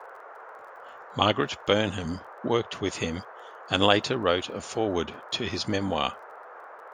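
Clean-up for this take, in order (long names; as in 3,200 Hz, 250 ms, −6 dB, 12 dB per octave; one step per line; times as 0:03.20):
click removal
noise reduction from a noise print 26 dB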